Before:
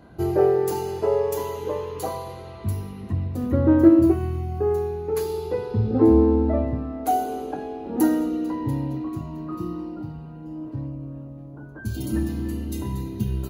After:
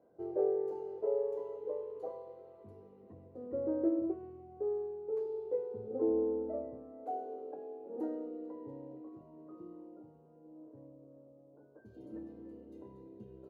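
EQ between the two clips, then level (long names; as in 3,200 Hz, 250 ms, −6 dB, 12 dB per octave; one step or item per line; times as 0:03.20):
resonant band-pass 500 Hz, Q 3.7
−7.5 dB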